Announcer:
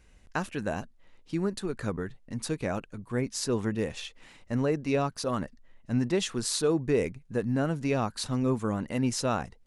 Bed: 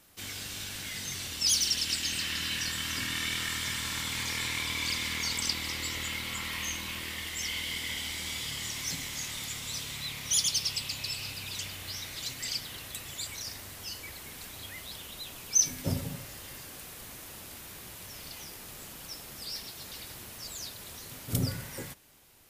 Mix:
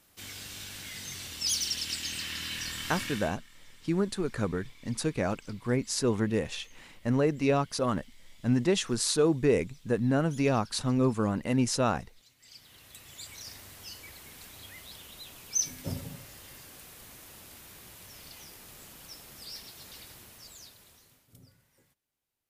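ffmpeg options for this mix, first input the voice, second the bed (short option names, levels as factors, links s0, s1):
-filter_complex "[0:a]adelay=2550,volume=1.19[s0];[1:a]volume=7.08,afade=t=out:st=3.03:d=0.32:silence=0.0841395,afade=t=in:st=12.39:d=1.14:silence=0.0944061,afade=t=out:st=19.98:d=1.34:silence=0.0707946[s1];[s0][s1]amix=inputs=2:normalize=0"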